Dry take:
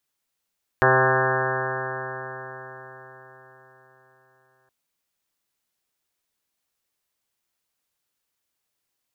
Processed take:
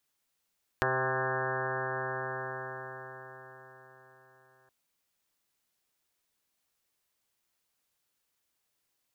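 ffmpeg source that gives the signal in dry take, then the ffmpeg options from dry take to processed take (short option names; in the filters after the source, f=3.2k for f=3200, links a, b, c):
-f lavfi -i "aevalsrc='0.0631*pow(10,-3*t/4.66)*sin(2*PI*129.05*t)+0.0188*pow(10,-3*t/4.66)*sin(2*PI*258.44*t)+0.0891*pow(10,-3*t/4.66)*sin(2*PI*388.48*t)+0.0668*pow(10,-3*t/4.66)*sin(2*PI*519.5*t)+0.0631*pow(10,-3*t/4.66)*sin(2*PI*651.82*t)+0.075*pow(10,-3*t/4.66)*sin(2*PI*785.75*t)+0.0473*pow(10,-3*t/4.66)*sin(2*PI*921.61*t)+0.0668*pow(10,-3*t/4.66)*sin(2*PI*1059.7*t)+0.0501*pow(10,-3*t/4.66)*sin(2*PI*1200.3*t)+0.0422*pow(10,-3*t/4.66)*sin(2*PI*1343.71*t)+0.0596*pow(10,-3*t/4.66)*sin(2*PI*1490.19*t)+0.0891*pow(10,-3*t/4.66)*sin(2*PI*1640*t)+0.0501*pow(10,-3*t/4.66)*sin(2*PI*1793.41*t)':d=3.87:s=44100"
-af "acompressor=threshold=-31dB:ratio=3"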